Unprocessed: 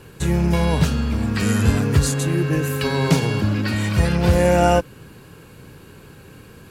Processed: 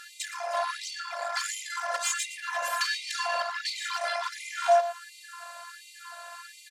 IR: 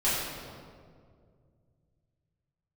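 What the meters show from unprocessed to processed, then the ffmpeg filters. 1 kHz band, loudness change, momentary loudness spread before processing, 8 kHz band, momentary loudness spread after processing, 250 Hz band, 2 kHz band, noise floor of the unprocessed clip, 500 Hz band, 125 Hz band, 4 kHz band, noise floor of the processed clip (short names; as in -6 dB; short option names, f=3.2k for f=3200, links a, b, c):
-3.0 dB, -10.5 dB, 6 LU, -3.5 dB, 19 LU, under -40 dB, -4.0 dB, -45 dBFS, -9.5 dB, under -40 dB, -3.0 dB, -51 dBFS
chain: -filter_complex "[0:a]equalizer=f=2.6k:t=o:w=0.46:g=-9.5,acompressor=threshold=-18dB:ratio=12,asoftclip=type=hard:threshold=-21dB,afftfilt=real='hypot(re,im)*cos(PI*b)':imag='0':win_size=512:overlap=0.75,aeval=exprs='0.266*sin(PI/2*2.82*val(0)/0.266)':c=same,highpass=150,lowpass=7.5k,asplit=2[a][b];[b]aecho=0:1:116|232|348:0.224|0.0582|0.0151[c];[a][c]amix=inputs=2:normalize=0,afftfilt=real='re*gte(b*sr/1024,490*pow(2000/490,0.5+0.5*sin(2*PI*1.4*pts/sr)))':imag='im*gte(b*sr/1024,490*pow(2000/490,0.5+0.5*sin(2*PI*1.4*pts/sr)))':win_size=1024:overlap=0.75"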